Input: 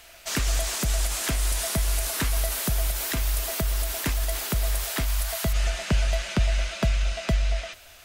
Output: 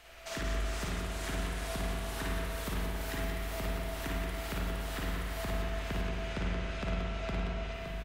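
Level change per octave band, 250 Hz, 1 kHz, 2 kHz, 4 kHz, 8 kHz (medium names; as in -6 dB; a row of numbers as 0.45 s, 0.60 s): -5.5 dB, -4.5 dB, -6.5 dB, -11.0 dB, -17.5 dB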